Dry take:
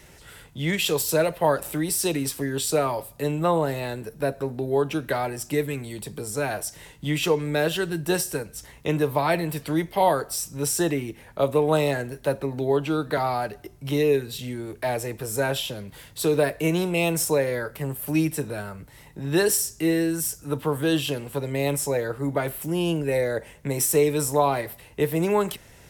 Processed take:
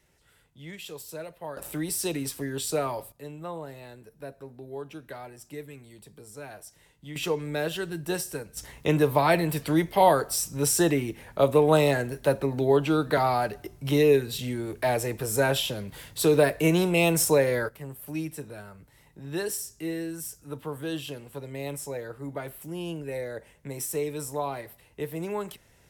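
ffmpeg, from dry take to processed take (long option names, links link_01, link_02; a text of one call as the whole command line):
ffmpeg -i in.wav -af "asetnsamples=nb_out_samples=441:pad=0,asendcmd='1.57 volume volume -5dB;3.12 volume volume -15dB;7.16 volume volume -6dB;8.57 volume volume 1dB;17.69 volume volume -10dB',volume=-17dB" out.wav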